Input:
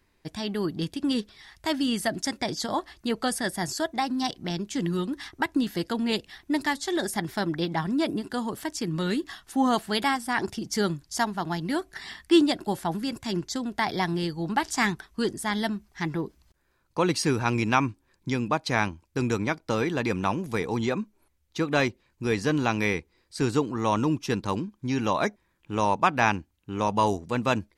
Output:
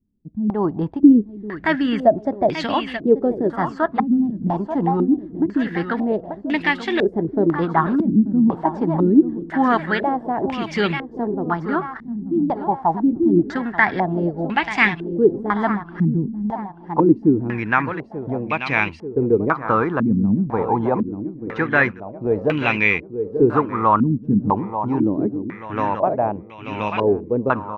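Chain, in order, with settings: AGC gain up to 15 dB; feedback echo 0.886 s, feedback 53%, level -10 dB; stepped low-pass 2 Hz 220–2500 Hz; gain -6.5 dB

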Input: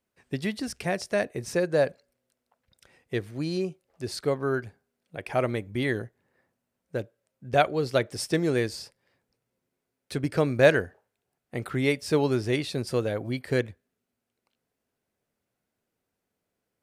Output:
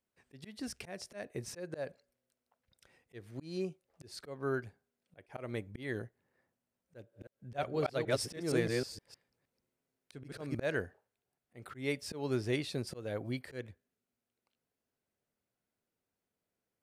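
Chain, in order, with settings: 6.96–10.55 reverse delay 0.156 s, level -1.5 dB; auto swell 0.221 s; gain -7 dB

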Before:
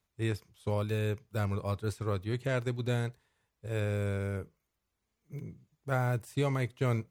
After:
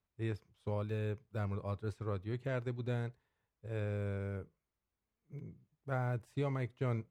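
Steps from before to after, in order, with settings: LPF 2100 Hz 6 dB/oct; gain -5.5 dB

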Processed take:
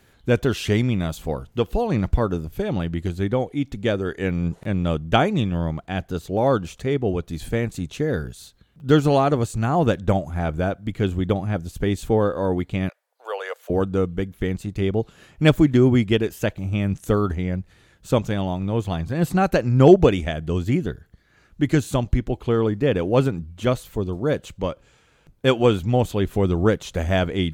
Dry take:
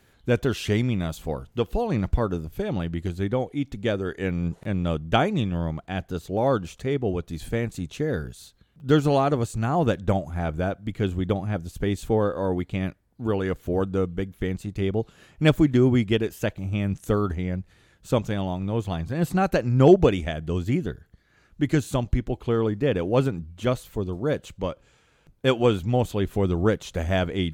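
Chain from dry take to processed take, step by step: 12.89–13.7 steep high-pass 500 Hz 48 dB/oct; gain +3 dB

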